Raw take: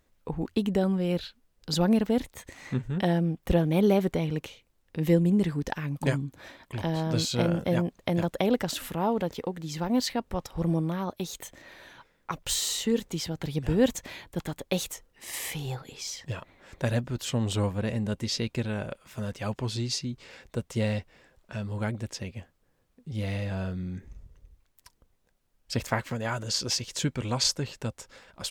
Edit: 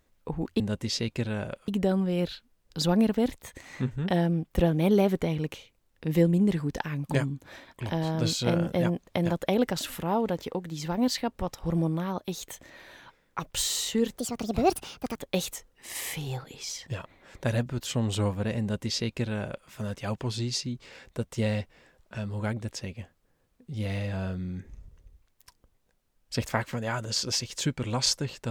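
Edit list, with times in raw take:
13.10–14.54 s: speed 147%
17.99–19.07 s: copy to 0.60 s

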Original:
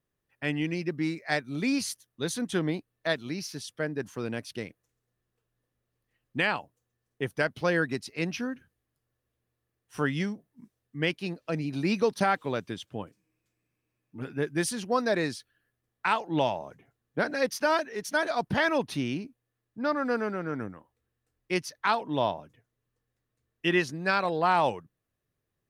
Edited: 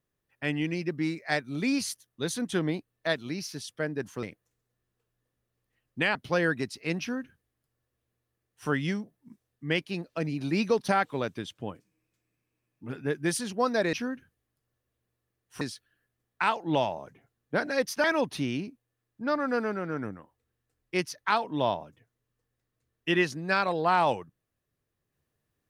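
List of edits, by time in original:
4.23–4.61 s: delete
6.53–7.47 s: delete
8.32–10.00 s: copy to 15.25 s
17.68–18.61 s: delete

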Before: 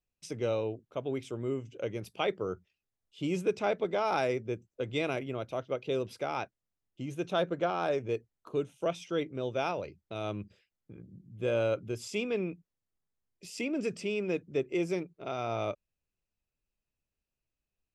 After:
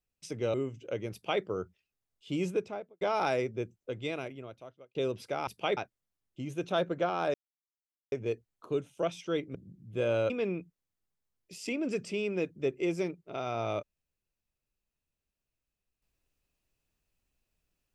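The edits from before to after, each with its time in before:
0.54–1.45 s: delete
2.03–2.33 s: copy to 6.38 s
3.32–3.92 s: studio fade out
4.52–5.86 s: fade out
7.95 s: insert silence 0.78 s
9.38–11.01 s: delete
11.76–12.22 s: delete

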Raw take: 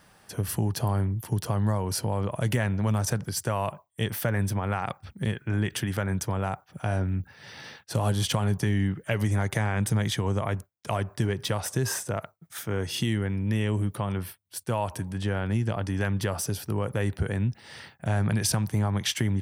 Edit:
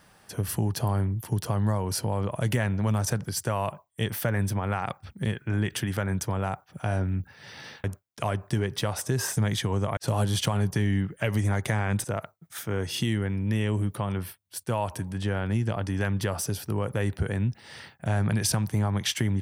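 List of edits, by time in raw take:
7.84–9.91 s: swap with 10.51–12.04 s

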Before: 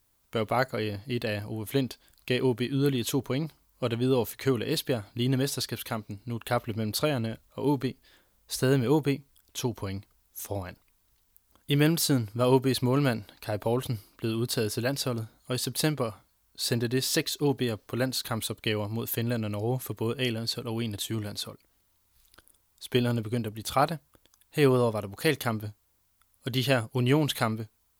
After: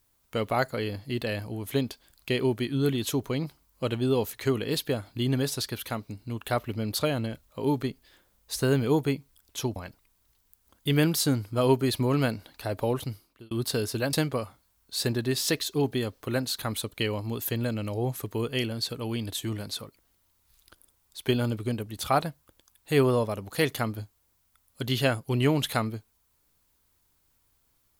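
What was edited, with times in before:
9.76–10.59 s: delete
13.76–14.34 s: fade out
14.96–15.79 s: delete

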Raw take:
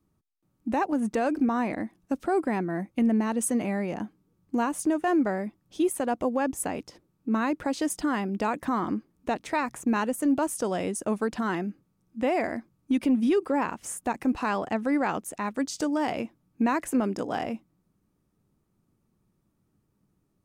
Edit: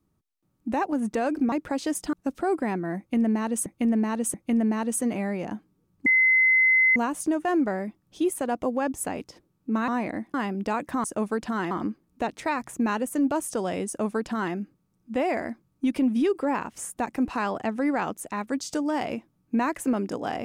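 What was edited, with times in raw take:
1.52–1.98 s: swap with 7.47–8.08 s
2.83–3.51 s: loop, 3 plays
4.55 s: add tone 2.05 kHz -16 dBFS 0.90 s
10.94–11.61 s: copy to 8.78 s

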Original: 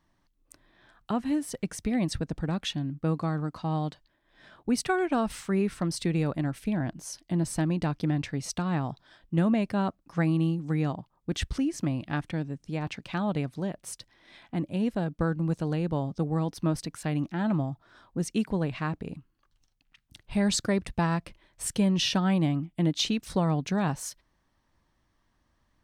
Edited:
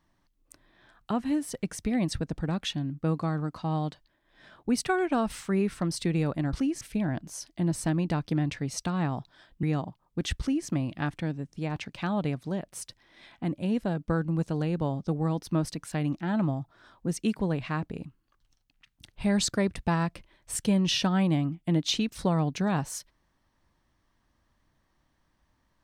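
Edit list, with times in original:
9.35–10.74 s: delete
11.51–11.79 s: copy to 6.53 s

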